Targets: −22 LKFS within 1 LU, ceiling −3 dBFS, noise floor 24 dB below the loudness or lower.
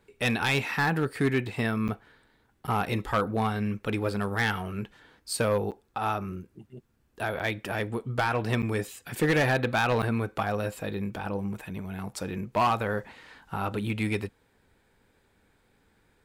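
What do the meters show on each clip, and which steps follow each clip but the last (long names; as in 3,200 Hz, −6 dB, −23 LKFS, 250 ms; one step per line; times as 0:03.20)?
share of clipped samples 0.6%; peaks flattened at −18.5 dBFS; number of dropouts 6; longest dropout 8.0 ms; integrated loudness −29.0 LKFS; sample peak −18.5 dBFS; target loudness −22.0 LKFS
→ clipped peaks rebuilt −18.5 dBFS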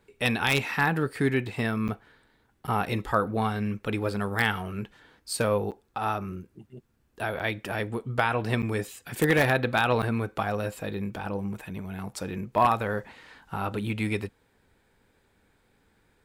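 share of clipped samples 0.0%; number of dropouts 6; longest dropout 8.0 ms
→ repair the gap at 0:01.88/0:02.67/0:05.71/0:07.39/0:08.62/0:10.02, 8 ms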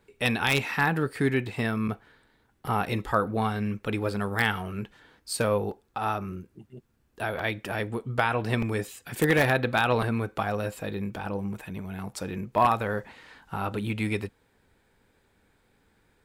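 number of dropouts 0; integrated loudness −28.0 LKFS; sample peak −9.5 dBFS; target loudness −22.0 LKFS
→ level +6 dB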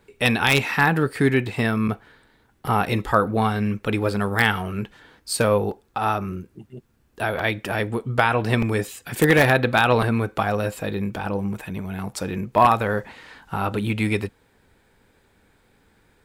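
integrated loudness −22.0 LKFS; sample peak −3.5 dBFS; background noise floor −61 dBFS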